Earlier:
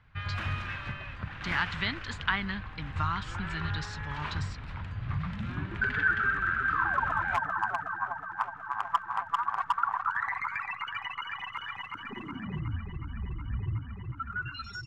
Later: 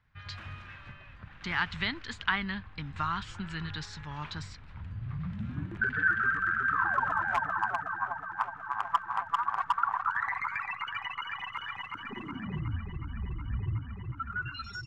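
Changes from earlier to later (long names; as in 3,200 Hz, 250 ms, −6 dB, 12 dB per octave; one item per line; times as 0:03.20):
first sound −10.5 dB
master: add high-shelf EQ 11,000 Hz −3 dB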